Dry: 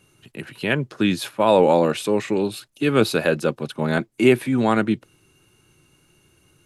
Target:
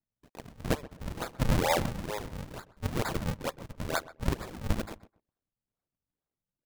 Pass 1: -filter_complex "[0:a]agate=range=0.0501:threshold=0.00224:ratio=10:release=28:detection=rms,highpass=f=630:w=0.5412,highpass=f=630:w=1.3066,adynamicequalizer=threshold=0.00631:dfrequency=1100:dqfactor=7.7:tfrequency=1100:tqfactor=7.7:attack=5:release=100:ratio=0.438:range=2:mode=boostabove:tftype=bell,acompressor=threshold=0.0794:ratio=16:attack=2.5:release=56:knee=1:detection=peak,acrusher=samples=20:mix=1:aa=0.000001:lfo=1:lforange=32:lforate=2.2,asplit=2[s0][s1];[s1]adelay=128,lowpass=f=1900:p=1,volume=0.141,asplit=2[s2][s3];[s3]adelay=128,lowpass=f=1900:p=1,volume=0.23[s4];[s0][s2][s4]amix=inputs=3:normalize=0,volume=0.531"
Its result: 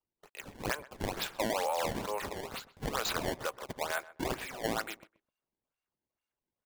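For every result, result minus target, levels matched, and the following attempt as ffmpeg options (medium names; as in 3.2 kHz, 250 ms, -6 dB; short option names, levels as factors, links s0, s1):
compression: peak gain reduction +10 dB; decimation with a swept rate: distortion -12 dB
-filter_complex "[0:a]agate=range=0.0501:threshold=0.00224:ratio=10:release=28:detection=rms,highpass=f=630:w=0.5412,highpass=f=630:w=1.3066,adynamicequalizer=threshold=0.00631:dfrequency=1100:dqfactor=7.7:tfrequency=1100:tqfactor=7.7:attack=5:release=100:ratio=0.438:range=2:mode=boostabove:tftype=bell,acrusher=samples=20:mix=1:aa=0.000001:lfo=1:lforange=32:lforate=2.2,asplit=2[s0][s1];[s1]adelay=128,lowpass=f=1900:p=1,volume=0.141,asplit=2[s2][s3];[s3]adelay=128,lowpass=f=1900:p=1,volume=0.23[s4];[s0][s2][s4]amix=inputs=3:normalize=0,volume=0.531"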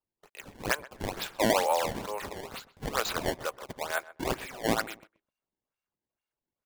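decimation with a swept rate: distortion -12 dB
-filter_complex "[0:a]agate=range=0.0501:threshold=0.00224:ratio=10:release=28:detection=rms,highpass=f=630:w=0.5412,highpass=f=630:w=1.3066,adynamicequalizer=threshold=0.00631:dfrequency=1100:dqfactor=7.7:tfrequency=1100:tqfactor=7.7:attack=5:release=100:ratio=0.438:range=2:mode=boostabove:tftype=bell,acrusher=samples=73:mix=1:aa=0.000001:lfo=1:lforange=117:lforate=2.2,asplit=2[s0][s1];[s1]adelay=128,lowpass=f=1900:p=1,volume=0.141,asplit=2[s2][s3];[s3]adelay=128,lowpass=f=1900:p=1,volume=0.23[s4];[s0][s2][s4]amix=inputs=3:normalize=0,volume=0.531"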